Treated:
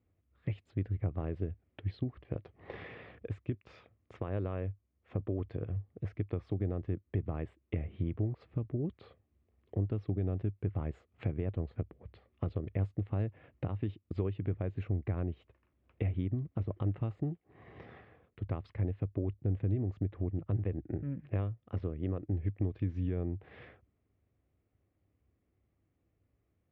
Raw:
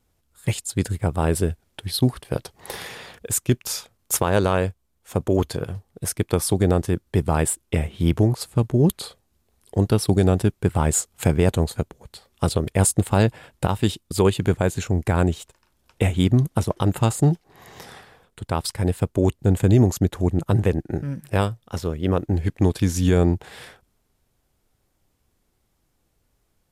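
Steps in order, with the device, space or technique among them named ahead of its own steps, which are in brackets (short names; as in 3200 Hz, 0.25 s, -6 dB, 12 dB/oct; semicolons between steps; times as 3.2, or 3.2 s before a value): bass amplifier (compressor 5:1, threshold -27 dBFS, peak gain reduction 14 dB; speaker cabinet 64–2300 Hz, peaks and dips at 65 Hz +8 dB, 100 Hz +8 dB, 300 Hz +5 dB, 900 Hz -10 dB, 1500 Hz -8 dB); gain -7.5 dB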